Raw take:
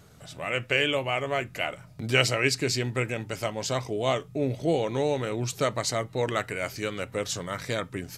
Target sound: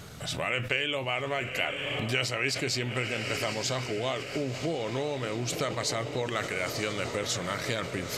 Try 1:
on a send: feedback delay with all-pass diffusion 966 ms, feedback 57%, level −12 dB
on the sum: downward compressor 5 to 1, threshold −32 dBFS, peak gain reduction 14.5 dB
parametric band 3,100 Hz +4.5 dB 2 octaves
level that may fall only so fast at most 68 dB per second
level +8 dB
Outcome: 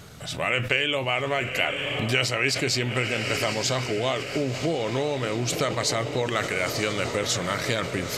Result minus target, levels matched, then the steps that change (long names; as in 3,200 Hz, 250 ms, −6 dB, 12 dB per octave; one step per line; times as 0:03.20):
downward compressor: peak gain reduction −5 dB
change: downward compressor 5 to 1, threshold −38.5 dBFS, peak gain reduction 20 dB